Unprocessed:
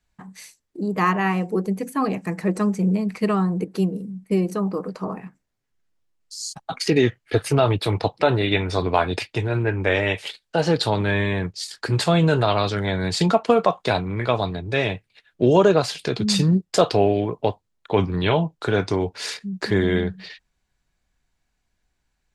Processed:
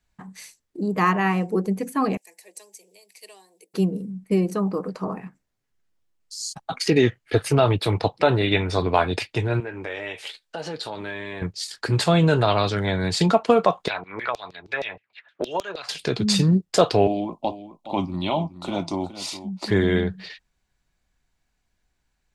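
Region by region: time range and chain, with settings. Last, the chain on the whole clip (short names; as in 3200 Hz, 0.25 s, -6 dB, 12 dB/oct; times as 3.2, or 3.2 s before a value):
2.17–3.74 Chebyshev high-pass 200 Hz, order 5 + differentiator + fixed phaser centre 540 Hz, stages 4
9.6–11.42 bell 73 Hz -13 dB 2.7 oct + compressor 3:1, threshold -31 dBFS + doubler 13 ms -11 dB
13.88–15.89 LFO band-pass saw down 6.4 Hz 600–5300 Hz + three-band squash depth 100%
17.07–19.68 fixed phaser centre 440 Hz, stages 6 + echo 0.419 s -13.5 dB
whole clip: dry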